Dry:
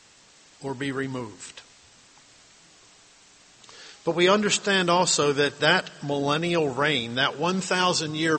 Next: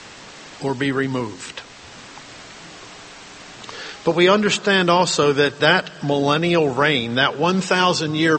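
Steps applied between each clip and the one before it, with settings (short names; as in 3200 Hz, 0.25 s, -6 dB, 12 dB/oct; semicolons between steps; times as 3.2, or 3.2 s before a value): air absorption 80 m; three-band squash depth 40%; gain +6.5 dB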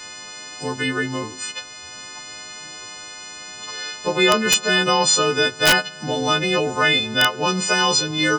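frequency quantiser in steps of 3 st; wrapped overs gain 1.5 dB; gain -3.5 dB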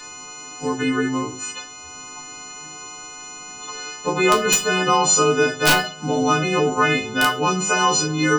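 bell 2000 Hz -4.5 dB 0.24 oct; reverb RT60 0.35 s, pre-delay 4 ms, DRR 0.5 dB; gain -1.5 dB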